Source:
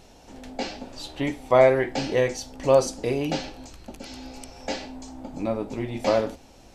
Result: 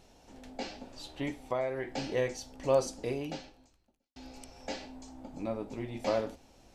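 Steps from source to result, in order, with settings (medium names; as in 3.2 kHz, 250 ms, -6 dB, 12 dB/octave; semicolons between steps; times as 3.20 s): 1.39–1.94 s: compression 4:1, threshold -22 dBFS, peak gain reduction 9.5 dB; 3.11–4.16 s: fade out quadratic; trim -8.5 dB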